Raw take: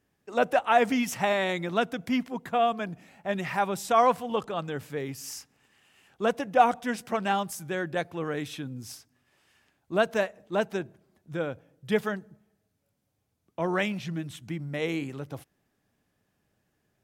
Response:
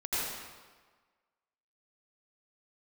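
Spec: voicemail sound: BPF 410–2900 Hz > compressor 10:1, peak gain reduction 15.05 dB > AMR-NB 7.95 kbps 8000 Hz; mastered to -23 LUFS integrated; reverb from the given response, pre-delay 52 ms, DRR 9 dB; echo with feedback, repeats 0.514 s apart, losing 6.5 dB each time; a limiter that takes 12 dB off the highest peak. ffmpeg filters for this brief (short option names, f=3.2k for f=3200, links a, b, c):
-filter_complex "[0:a]alimiter=limit=-19.5dB:level=0:latency=1,aecho=1:1:514|1028|1542|2056|2570|3084:0.473|0.222|0.105|0.0491|0.0231|0.0109,asplit=2[a][b];[1:a]atrim=start_sample=2205,adelay=52[c];[b][c]afir=irnorm=-1:irlink=0,volume=-16.5dB[d];[a][d]amix=inputs=2:normalize=0,highpass=410,lowpass=2.9k,acompressor=threshold=-39dB:ratio=10,volume=22dB" -ar 8000 -c:a libopencore_amrnb -b:a 7950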